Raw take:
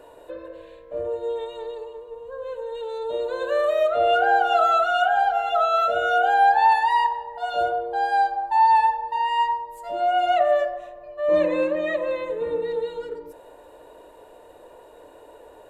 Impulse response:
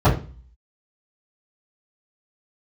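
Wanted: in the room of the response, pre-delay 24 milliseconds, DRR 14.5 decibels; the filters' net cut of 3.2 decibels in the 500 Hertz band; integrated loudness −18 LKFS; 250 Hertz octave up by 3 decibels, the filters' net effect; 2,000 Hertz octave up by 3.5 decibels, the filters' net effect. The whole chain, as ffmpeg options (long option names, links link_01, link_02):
-filter_complex "[0:a]equalizer=frequency=250:width_type=o:gain=7.5,equalizer=frequency=500:width_type=o:gain=-6,equalizer=frequency=2000:width_type=o:gain=5.5,asplit=2[link_01][link_02];[1:a]atrim=start_sample=2205,adelay=24[link_03];[link_02][link_03]afir=irnorm=-1:irlink=0,volume=-36dB[link_04];[link_01][link_04]amix=inputs=2:normalize=0,volume=3.5dB"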